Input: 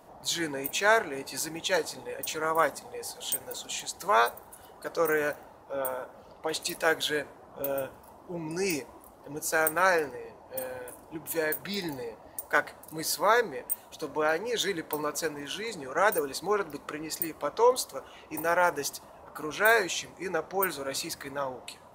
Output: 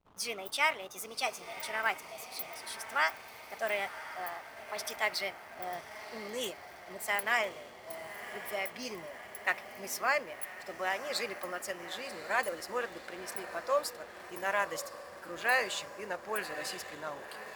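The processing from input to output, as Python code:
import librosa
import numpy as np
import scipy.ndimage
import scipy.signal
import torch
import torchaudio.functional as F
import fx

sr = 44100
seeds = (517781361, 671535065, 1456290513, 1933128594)

y = fx.speed_glide(x, sr, from_pct=141, to_pct=109)
y = fx.dynamic_eq(y, sr, hz=2900.0, q=0.73, threshold_db=-38.0, ratio=4.0, max_db=5)
y = fx.echo_diffused(y, sr, ms=1086, feedback_pct=64, wet_db=-12.0)
y = fx.backlash(y, sr, play_db=-43.0)
y = y * librosa.db_to_amplitude(-8.0)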